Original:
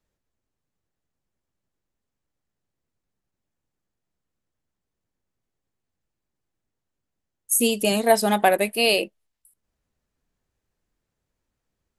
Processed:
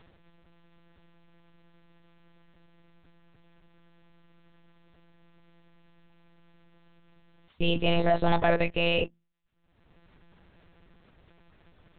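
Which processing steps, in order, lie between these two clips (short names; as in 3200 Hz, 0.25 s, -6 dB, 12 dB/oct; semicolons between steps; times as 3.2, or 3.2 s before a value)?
notches 60/120/180/240 Hz; sample leveller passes 1; upward compressor, threshold -38 dBFS; limiter -14.5 dBFS, peak gain reduction 11 dB; monotone LPC vocoder at 8 kHz 170 Hz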